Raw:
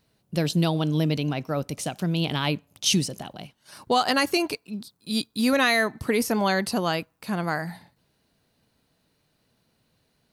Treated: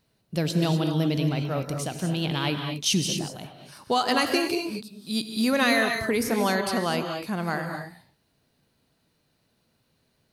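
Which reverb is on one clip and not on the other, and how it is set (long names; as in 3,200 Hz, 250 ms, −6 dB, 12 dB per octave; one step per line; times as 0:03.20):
reverb whose tail is shaped and stops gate 270 ms rising, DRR 4.5 dB
level −2 dB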